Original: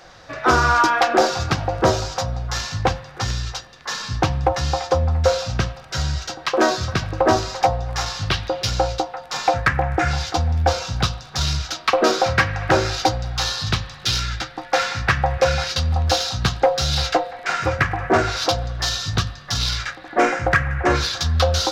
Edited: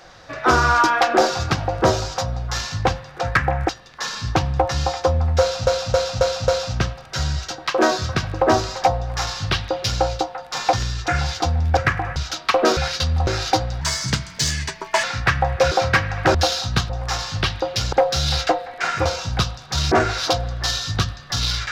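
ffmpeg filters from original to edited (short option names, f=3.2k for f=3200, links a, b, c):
-filter_complex "[0:a]asplit=21[a][b][c][d][e][f][g][h][i][j][k][l][m][n][o][p][q][r][s][t][u];[a]atrim=end=3.212[v];[b]atrim=start=9.518:end=10.002[w];[c]atrim=start=3.558:end=5.542[x];[d]atrim=start=5.268:end=5.542[y];[e]atrim=start=5.268:end=5.542[z];[f]atrim=start=5.268:end=5.542[aa];[g]atrim=start=5.268:end=9.522[ab];[h]atrim=start=3.208:end=3.562[ac];[i]atrim=start=9.998:end=10.692[ad];[j]atrim=start=17.708:end=18.102[ae];[k]atrim=start=11.548:end=12.162[af];[l]atrim=start=15.528:end=16.032[ag];[m]atrim=start=12.788:end=13.334[ah];[n]atrim=start=13.33:end=14.85,asetpts=PTS-STARTPTS,asetrate=54684,aresample=44100,atrim=end_sample=54058,asetpts=PTS-STARTPTS[ai];[o]atrim=start=14.846:end=15.532[aj];[p]atrim=start=12.158:end=12.792[ak];[q]atrim=start=16.028:end=16.582[al];[r]atrim=start=7.768:end=8.802[am];[s]atrim=start=16.578:end=17.712[an];[t]atrim=start=10.688:end=11.552[ao];[u]atrim=start=18.098[ap];[v][w]acrossfade=d=0.004:c1=hsin:c2=hsin[aq];[aq][x]acrossfade=d=0.004:c1=hsin:c2=hsin[ar];[ar][y]acrossfade=d=0.004:c1=hsin:c2=hsin[as];[as][z]acrossfade=d=0.004:c1=hsin:c2=hsin[at];[at][aa]acrossfade=d=0.004:c1=hsin:c2=hsin[au];[au][ab]acrossfade=d=0.004:c1=hsin:c2=hsin[av];[av][ac]acrossfade=d=0.004:c1=hsin:c2=hsin[aw];[aw][ad]acrossfade=d=0.004:c1=hsin:c2=hsin[ax];[ax][ae]acrossfade=d=0.004:c1=hsin:c2=hsin[ay];[ay][af]acrossfade=d=0.004:c1=hsin:c2=hsin[az];[az][ag]acrossfade=d=0.004:c1=hsin:c2=hsin[ba];[ba][ah]acrossfade=d=0.004:c1=hsin:c2=hsin[bb];[bb][ai]acrossfade=d=0.004:c1=hsin:c2=hsin[bc];[bc][aj]acrossfade=d=0.004:c1=hsin:c2=hsin[bd];[bd][ak]acrossfade=d=0.004:c1=hsin:c2=hsin[be];[be][al]acrossfade=d=0.004:c1=hsin:c2=hsin[bf];[bf][am]acrossfade=d=0.004:c1=hsin:c2=hsin[bg];[bg][an]acrossfade=d=0.004:c1=hsin:c2=hsin[bh];[bh][ao]acrossfade=d=0.004:c1=hsin:c2=hsin[bi];[bi][ap]acrossfade=d=0.004:c1=hsin:c2=hsin"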